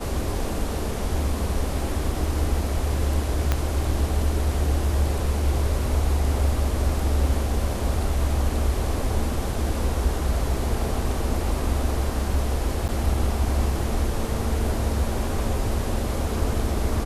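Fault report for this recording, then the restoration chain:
0:03.52: click −8 dBFS
0:12.88–0:12.89: drop-out 8.5 ms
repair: click removal
repair the gap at 0:12.88, 8.5 ms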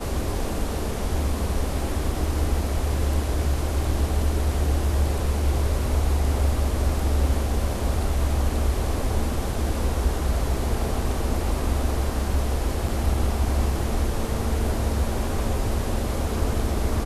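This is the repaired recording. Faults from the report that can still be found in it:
0:03.52: click

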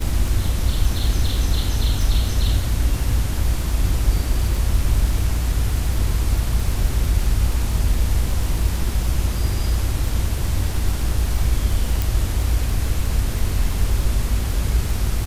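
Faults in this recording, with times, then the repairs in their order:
surface crackle 30 per second −24 dBFS
0:12.02: click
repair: click removal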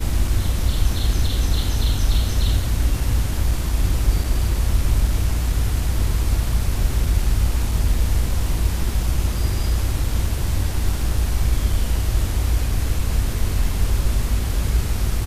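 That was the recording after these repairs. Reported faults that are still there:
none of them is left

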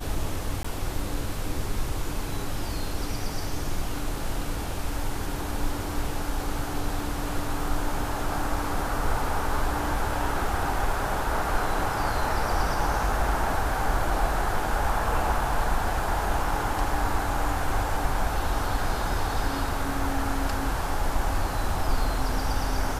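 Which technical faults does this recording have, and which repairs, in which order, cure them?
0:00.63–0:00.65: drop-out 15 ms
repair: repair the gap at 0:00.63, 15 ms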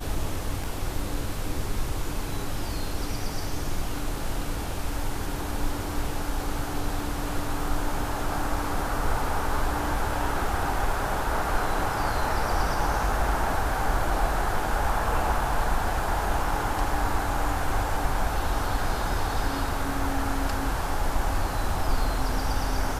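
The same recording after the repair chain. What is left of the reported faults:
none of them is left

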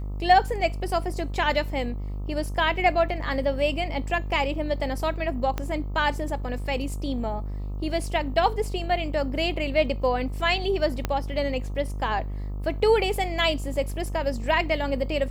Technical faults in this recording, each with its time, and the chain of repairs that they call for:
mains buzz 50 Hz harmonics 26 −31 dBFS
0:05.58: click −14 dBFS
0:11.05: click −11 dBFS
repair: click removal
hum removal 50 Hz, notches 26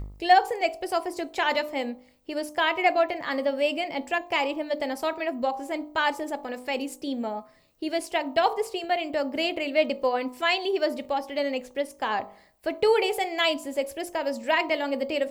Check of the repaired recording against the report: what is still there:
none of them is left

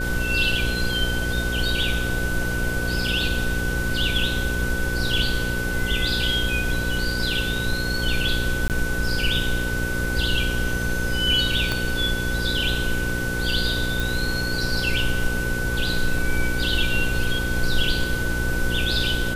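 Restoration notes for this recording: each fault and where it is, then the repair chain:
mains buzz 60 Hz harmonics 9 −28 dBFS
whistle 1,500 Hz −27 dBFS
0:08.68–0:08.70: drop-out 18 ms
0:11.72: click −9 dBFS
0:14.00: click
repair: click removal
hum removal 60 Hz, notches 9
notch filter 1,500 Hz, Q 30
repair the gap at 0:08.68, 18 ms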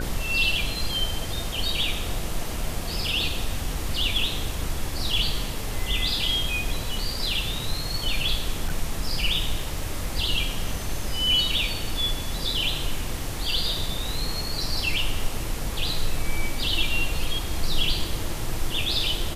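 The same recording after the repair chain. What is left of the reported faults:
0:11.72: click

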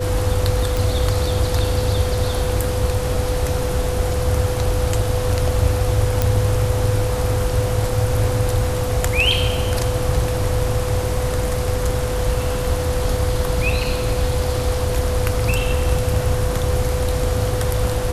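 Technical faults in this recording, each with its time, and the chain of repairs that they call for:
whistle 500 Hz −24 dBFS
0:00.77: click
0:06.22: click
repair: click removal
notch filter 500 Hz, Q 30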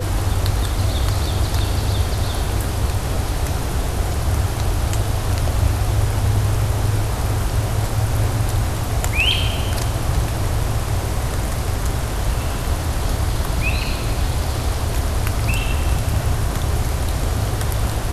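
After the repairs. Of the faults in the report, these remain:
none of them is left

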